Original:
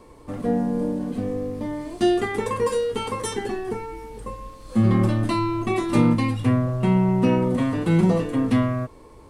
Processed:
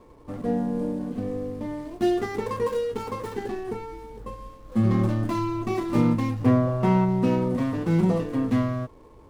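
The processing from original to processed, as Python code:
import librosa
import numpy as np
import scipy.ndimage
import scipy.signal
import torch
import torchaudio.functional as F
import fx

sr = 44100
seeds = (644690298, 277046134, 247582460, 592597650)

y = scipy.signal.medfilt(x, 15)
y = fx.peak_eq(y, sr, hz=fx.line((6.4, 450.0), (7.04, 1300.0)), db=7.5, octaves=2.6, at=(6.4, 7.04), fade=0.02)
y = F.gain(torch.from_numpy(y), -3.0).numpy()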